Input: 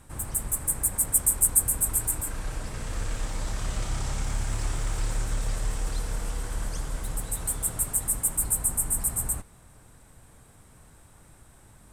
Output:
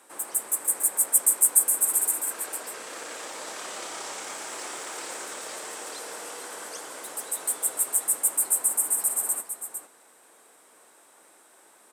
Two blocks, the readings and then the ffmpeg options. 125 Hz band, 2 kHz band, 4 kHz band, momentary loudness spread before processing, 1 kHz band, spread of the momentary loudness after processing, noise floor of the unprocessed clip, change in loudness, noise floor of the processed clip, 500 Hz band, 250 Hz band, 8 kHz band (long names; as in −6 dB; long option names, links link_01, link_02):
below −30 dB, +2.5 dB, +2.5 dB, 13 LU, +2.5 dB, 17 LU, −54 dBFS, +2.5 dB, −57 dBFS, +2.0 dB, −7.5 dB, +2.5 dB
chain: -filter_complex "[0:a]highpass=frequency=350:width=0.5412,highpass=frequency=350:width=1.3066,asplit=2[link_01][link_02];[link_02]aecho=0:1:453:0.355[link_03];[link_01][link_03]amix=inputs=2:normalize=0,volume=2dB"